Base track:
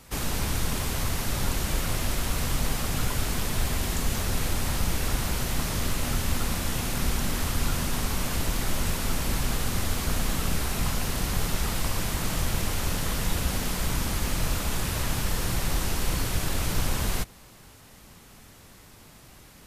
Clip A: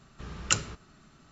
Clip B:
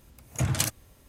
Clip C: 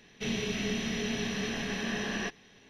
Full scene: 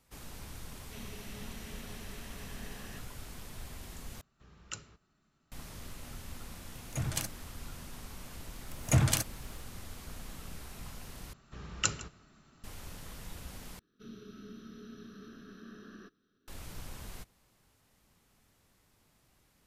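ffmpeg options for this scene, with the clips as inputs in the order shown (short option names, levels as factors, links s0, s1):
-filter_complex "[3:a]asplit=2[s0][s1];[1:a]asplit=2[s2][s3];[2:a]asplit=2[s4][s5];[0:a]volume=0.119[s6];[s5]dynaudnorm=f=120:g=3:m=5.62[s7];[s3]aecho=1:1:156:0.119[s8];[s1]firequalizer=gain_entry='entry(150,0);entry(310,8);entry(470,-2);entry(880,-20);entry(1300,13);entry(2000,-18);entry(3900,-3);entry(8400,-11);entry(13000,11)':delay=0.05:min_phase=1[s9];[s6]asplit=4[s10][s11][s12][s13];[s10]atrim=end=4.214[s14];[s2]atrim=end=1.31,asetpts=PTS-STARTPTS,volume=0.141[s15];[s11]atrim=start=5.516:end=11.334[s16];[s8]atrim=end=1.31,asetpts=PTS-STARTPTS,volume=0.596[s17];[s12]atrim=start=12.636:end=13.794[s18];[s9]atrim=end=2.69,asetpts=PTS-STARTPTS,volume=0.126[s19];[s13]atrim=start=16.476[s20];[s0]atrim=end=2.69,asetpts=PTS-STARTPTS,volume=0.141,afade=t=in:d=0.004:c=hsin,afade=t=out:st=2.686:d=0.004:c=hsin,adelay=700[s21];[s4]atrim=end=1.08,asetpts=PTS-STARTPTS,volume=0.376,afade=t=in:d=0.004:c=hsin,afade=t=out:st=1.076:d=0.004:c=hsin,adelay=6570[s22];[s7]atrim=end=1.08,asetpts=PTS-STARTPTS,volume=0.299,afade=t=in:d=0.004:c=hsin,afade=t=out:st=1.076:d=0.004:c=hsin,adelay=8530[s23];[s14][s15]acrossfade=d=0.004:c1=hsin:c2=hsin[s24];[s24][s16]acrossfade=d=0.004:c1=hsin:c2=hsin[s25];[s25][s17]acrossfade=d=0.004:c1=hsin:c2=hsin[s26];[s26][s18]acrossfade=d=0.004:c1=hsin:c2=hsin[s27];[s27][s19]acrossfade=d=0.004:c1=hsin:c2=hsin[s28];[s28][s20]acrossfade=d=0.004:c1=hsin:c2=hsin[s29];[s29][s21][s22][s23]amix=inputs=4:normalize=0"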